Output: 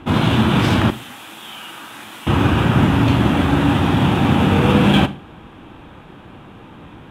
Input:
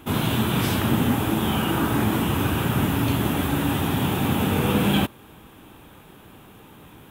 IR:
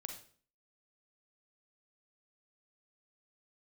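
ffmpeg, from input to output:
-filter_complex "[0:a]asettb=1/sr,asplit=3[link_01][link_02][link_03];[link_01]atrim=end=0.904[link_04];[link_02]atrim=start=0.9:end=2.27,asetpts=PTS-STARTPTS,afade=type=in:duration=0.004:curve=qsin,afade=type=out:start_time=1.366:duration=0.004:curve=qsin,aderivative[link_05];[link_03]atrim=start=2.266[link_06];[link_04][link_05]acrossfade=duration=0.004:curve1=hsin:curve2=qsin[link_07];[link_07][link_06]acrossfade=duration=0.004:curve1=qsin:curve2=hsin,adynamicsmooth=sensitivity=2:basefreq=4000,bandreject=frequency=420:width=12,asplit=2[link_08][link_09];[1:a]atrim=start_sample=2205,asetrate=52920,aresample=44100[link_10];[link_09][link_10]afir=irnorm=-1:irlink=0,volume=-2.5dB[link_11];[link_08][link_11]amix=inputs=2:normalize=0,volume=5dB"

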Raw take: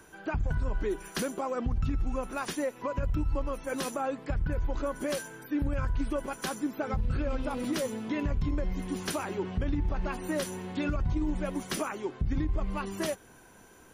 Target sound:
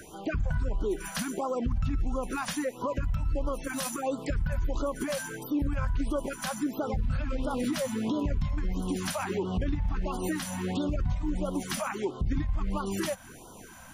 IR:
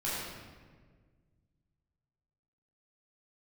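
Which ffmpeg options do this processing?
-filter_complex "[0:a]asettb=1/sr,asplit=3[link_01][link_02][link_03];[link_01]atrim=end=3.734[link_04];[link_02]atrim=start=3.73:end=4.83,asetpts=PTS-STARTPTS,afade=type=in:duration=0.004:curve=qsin,afade=type=out:start_time=1.096:duration=0.004:curve=qsin,highshelf=frequency=5600:gain=8[link_05];[link_03]atrim=start=4.826[link_06];[link_04][link_05]acrossfade=duration=0.004:curve1=hsin:curve2=qsin[link_07];[link_07][link_06]acrossfade=duration=0.004:curve1=qsin:curve2=hsin,alimiter=level_in=5.5dB:limit=-24dB:level=0:latency=1:release=154,volume=-5.5dB,afftfilt=real='re*(1-between(b*sr/1024,340*pow(2100/340,0.5+0.5*sin(2*PI*1.5*pts/sr))/1.41,340*pow(2100/340,0.5+0.5*sin(2*PI*1.5*pts/sr))*1.41))':imag='im*(1-between(b*sr/1024,340*pow(2100/340,0.5+0.5*sin(2*PI*1.5*pts/sr))/1.41,340*pow(2100/340,0.5+0.5*sin(2*PI*1.5*pts/sr))*1.41))':win_size=1024:overlap=0.75,volume=8dB"

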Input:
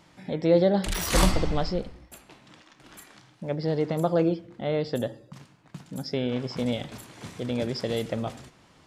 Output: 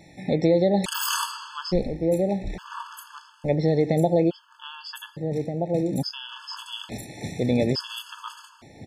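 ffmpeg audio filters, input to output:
ffmpeg -i in.wav -filter_complex "[0:a]asplit=2[link_01][link_02];[link_02]adelay=1574,volume=-9dB,highshelf=frequency=4000:gain=-35.4[link_03];[link_01][link_03]amix=inputs=2:normalize=0,acompressor=threshold=-24dB:ratio=6,afftfilt=real='re*gt(sin(2*PI*0.58*pts/sr)*(1-2*mod(floor(b*sr/1024/870),2)),0)':imag='im*gt(sin(2*PI*0.58*pts/sr)*(1-2*mod(floor(b*sr/1024/870),2)),0)':win_size=1024:overlap=0.75,volume=8dB" out.wav

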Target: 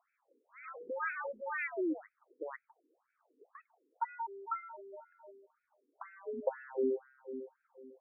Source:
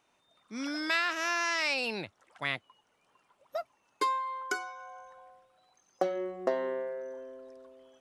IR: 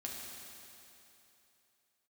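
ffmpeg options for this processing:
-af "highpass=frequency=170:width_type=q:width=0.5412,highpass=frequency=170:width_type=q:width=1.307,lowpass=frequency=2700:width_type=q:width=0.5176,lowpass=frequency=2700:width_type=q:width=0.7071,lowpass=frequency=2700:width_type=q:width=1.932,afreqshift=-130,equalizer=frequency=250:width_type=o:width=1:gain=10,equalizer=frequency=1000:width_type=o:width=1:gain=-4,equalizer=frequency=2000:width_type=o:width=1:gain=-6,afftfilt=real='re*between(b*sr/1024,340*pow(1900/340,0.5+0.5*sin(2*PI*2*pts/sr))/1.41,340*pow(1900/340,0.5+0.5*sin(2*PI*2*pts/sr))*1.41)':imag='im*between(b*sr/1024,340*pow(1900/340,0.5+0.5*sin(2*PI*2*pts/sr))/1.41,340*pow(1900/340,0.5+0.5*sin(2*PI*2*pts/sr))*1.41)':win_size=1024:overlap=0.75,volume=2.5dB"

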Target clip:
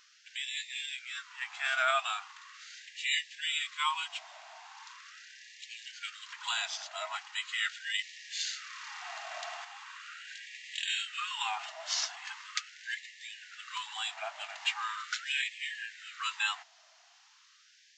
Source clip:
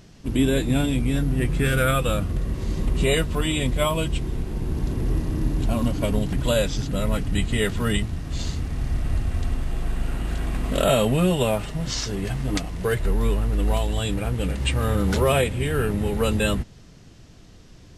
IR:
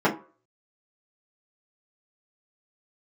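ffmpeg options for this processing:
-filter_complex "[0:a]aresample=16000,aresample=44100,asettb=1/sr,asplit=3[link_01][link_02][link_03];[link_01]atrim=end=7.994[link_04];[link_02]atrim=start=7.99:end=9.65,asetpts=PTS-STARTPTS,afade=type=in:duration=0.004:curve=qsin,afade=type=out:start_time=1.656:duration=0.004:curve=qsin,acontrast=34[link_05];[link_03]atrim=start=9.646[link_06];[link_04][link_05]acrossfade=duration=0.004:curve1=hsin:curve2=qsin[link_07];[link_07][link_06]acrossfade=duration=0.004:curve1=qsin:curve2=hsin,afftfilt=real='re*gte(b*sr/1024,600*pow(1700/600,0.5+0.5*sin(2*PI*0.4*pts/sr)))':imag='im*gte(b*sr/1024,600*pow(1700/600,0.5+0.5*sin(2*PI*0.4*pts/sr)))':win_size=1024:overlap=0.75,volume=-3dB"

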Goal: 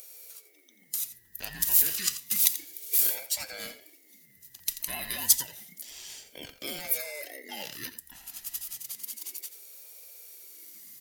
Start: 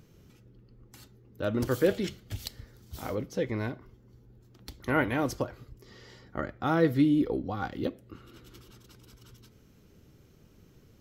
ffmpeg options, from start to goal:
ffmpeg -i in.wav -filter_complex "[0:a]afftfilt=real='real(if(between(b,1,1008),(2*floor((b-1)/48)+1)*48-b,b),0)':imag='imag(if(between(b,1,1008),(2*floor((b-1)/48)+1)*48-b,b),0)*if(between(b,1,1008),-1,1)':win_size=2048:overlap=0.75,acrossover=split=580[link_01][link_02];[link_01]acompressor=threshold=-50dB:ratio=6[link_03];[link_03][link_02]amix=inputs=2:normalize=0,alimiter=level_in=1.5dB:limit=-24dB:level=0:latency=1:release=49,volume=-1.5dB,crystalizer=i=9:c=0,bandreject=frequency=171:width_type=h:width=4,bandreject=frequency=342:width_type=h:width=4,crystalizer=i=7:c=0,asplit=2[link_04][link_05];[link_05]aecho=0:1:86:0.211[link_06];[link_04][link_06]amix=inputs=2:normalize=0,aeval=exprs='val(0)*sin(2*PI*1200*n/s+1200*0.2/0.3*sin(2*PI*0.3*n/s))':channel_layout=same,volume=-13dB" out.wav

